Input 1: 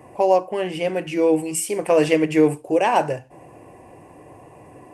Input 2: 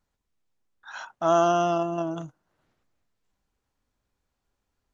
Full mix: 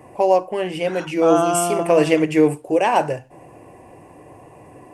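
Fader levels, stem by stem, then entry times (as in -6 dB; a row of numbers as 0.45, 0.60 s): +1.0, +2.0 dB; 0.00, 0.00 s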